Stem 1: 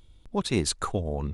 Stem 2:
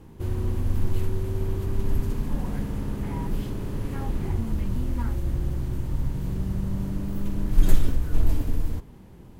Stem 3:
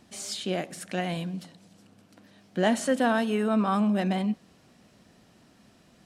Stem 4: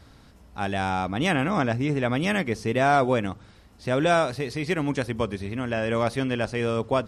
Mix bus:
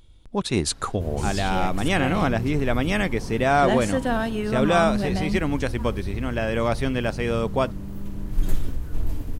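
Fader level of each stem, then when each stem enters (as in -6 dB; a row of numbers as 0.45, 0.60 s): +2.5, -4.5, -0.5, +1.0 dB; 0.00, 0.80, 1.05, 0.65 s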